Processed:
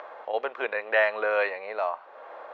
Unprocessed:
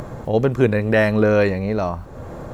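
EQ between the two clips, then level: high-pass 620 Hz 24 dB/octave; low-pass 3.3 kHz 24 dB/octave; -2.0 dB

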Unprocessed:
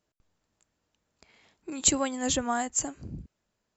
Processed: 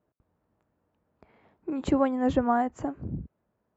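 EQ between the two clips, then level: high-pass 57 Hz; low-pass 1.1 kHz 12 dB/octave; +6.0 dB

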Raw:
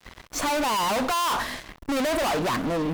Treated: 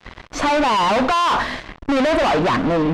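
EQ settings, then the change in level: Bessel low-pass 3.4 kHz, order 2; +8.0 dB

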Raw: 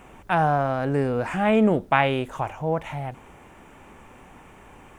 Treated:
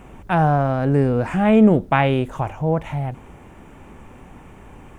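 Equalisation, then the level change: bass shelf 380 Hz +9.5 dB; 0.0 dB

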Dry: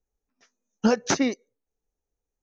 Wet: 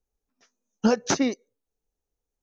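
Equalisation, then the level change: peaking EQ 2 kHz -3 dB 0.77 oct; 0.0 dB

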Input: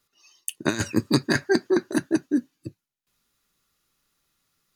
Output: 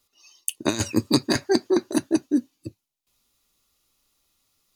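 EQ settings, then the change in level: fifteen-band graphic EQ 160 Hz -10 dB, 400 Hz -3 dB, 1.6 kHz -11 dB; +4.0 dB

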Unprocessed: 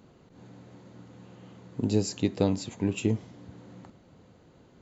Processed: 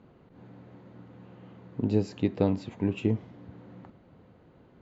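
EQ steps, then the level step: low-pass 2.6 kHz 12 dB/octave; 0.0 dB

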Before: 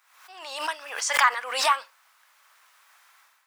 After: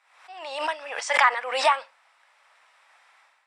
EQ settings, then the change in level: cabinet simulation 370–8400 Hz, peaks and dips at 390 Hz -9 dB, 1.1 kHz -7 dB, 1.5 kHz -6 dB, 3.1 kHz -3 dB, 4.5 kHz -5 dB, 6.5 kHz -10 dB; tilt EQ -2.5 dB/octave; +6.5 dB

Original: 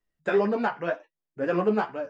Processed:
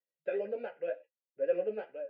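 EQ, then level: vowel filter e; Butterworth band-stop 1.8 kHz, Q 7.7; distance through air 96 m; 0.0 dB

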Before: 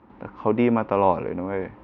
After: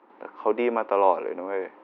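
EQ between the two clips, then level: high-pass 340 Hz 24 dB/octave; distance through air 78 m; 0.0 dB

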